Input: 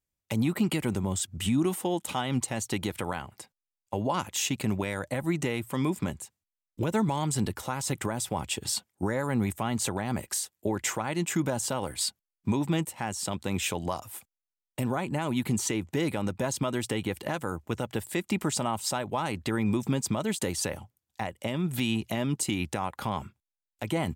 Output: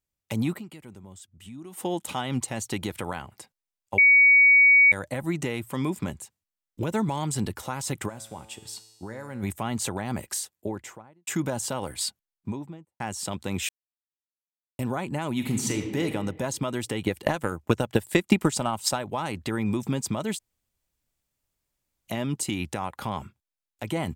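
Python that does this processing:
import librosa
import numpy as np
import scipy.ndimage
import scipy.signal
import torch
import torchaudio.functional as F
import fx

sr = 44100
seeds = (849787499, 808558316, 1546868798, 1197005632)

y = fx.comb_fb(x, sr, f0_hz=110.0, decay_s=1.2, harmonics='all', damping=0.0, mix_pct=70, at=(8.08, 9.42), fade=0.02)
y = fx.studio_fade_out(y, sr, start_s=10.39, length_s=0.88)
y = fx.studio_fade_out(y, sr, start_s=12.07, length_s=0.93)
y = fx.reverb_throw(y, sr, start_s=15.32, length_s=0.7, rt60_s=1.2, drr_db=3.5)
y = fx.transient(y, sr, attack_db=11, sustain_db=-3, at=(17.06, 18.95), fade=0.02)
y = fx.edit(y, sr, fx.fade_down_up(start_s=0.55, length_s=1.24, db=-16.5, fade_s=0.27, curve='exp'),
    fx.bleep(start_s=3.98, length_s=0.94, hz=2250.0, db=-12.5),
    fx.silence(start_s=13.69, length_s=1.1),
    fx.room_tone_fill(start_s=20.39, length_s=1.69), tone=tone)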